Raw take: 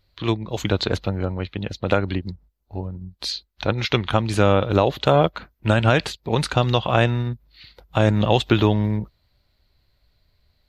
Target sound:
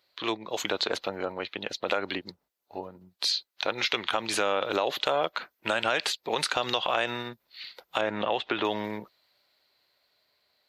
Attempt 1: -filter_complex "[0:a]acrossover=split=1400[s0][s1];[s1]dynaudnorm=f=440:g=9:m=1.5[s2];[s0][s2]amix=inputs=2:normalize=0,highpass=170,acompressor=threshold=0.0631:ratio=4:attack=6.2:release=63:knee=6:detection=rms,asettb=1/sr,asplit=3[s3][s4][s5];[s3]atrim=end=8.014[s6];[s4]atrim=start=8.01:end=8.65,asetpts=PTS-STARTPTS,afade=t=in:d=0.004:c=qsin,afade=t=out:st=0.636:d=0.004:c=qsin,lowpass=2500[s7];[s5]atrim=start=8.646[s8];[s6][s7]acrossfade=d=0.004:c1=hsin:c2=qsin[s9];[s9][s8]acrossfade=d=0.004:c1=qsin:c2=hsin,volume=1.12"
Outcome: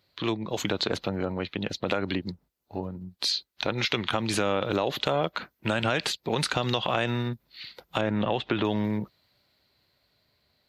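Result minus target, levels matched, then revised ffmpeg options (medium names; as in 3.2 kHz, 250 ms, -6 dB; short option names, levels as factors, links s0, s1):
125 Hz band +14.0 dB
-filter_complex "[0:a]acrossover=split=1400[s0][s1];[s1]dynaudnorm=f=440:g=9:m=1.5[s2];[s0][s2]amix=inputs=2:normalize=0,highpass=470,acompressor=threshold=0.0631:ratio=4:attack=6.2:release=63:knee=6:detection=rms,asettb=1/sr,asplit=3[s3][s4][s5];[s3]atrim=end=8.014[s6];[s4]atrim=start=8.01:end=8.65,asetpts=PTS-STARTPTS,afade=t=in:d=0.004:c=qsin,afade=t=out:st=0.636:d=0.004:c=qsin,lowpass=2500[s7];[s5]atrim=start=8.646[s8];[s6][s7]acrossfade=d=0.004:c1=hsin:c2=qsin[s9];[s9][s8]acrossfade=d=0.004:c1=qsin:c2=hsin,volume=1.12"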